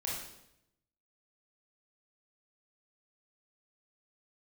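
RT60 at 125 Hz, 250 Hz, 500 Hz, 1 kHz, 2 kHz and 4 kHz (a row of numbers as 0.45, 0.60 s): 1.1, 0.95, 0.85, 0.75, 0.75, 0.75 s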